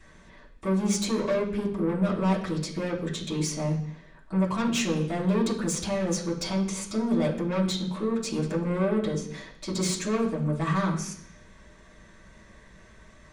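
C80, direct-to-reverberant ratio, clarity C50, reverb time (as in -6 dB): 11.0 dB, -7.0 dB, 8.0 dB, 0.65 s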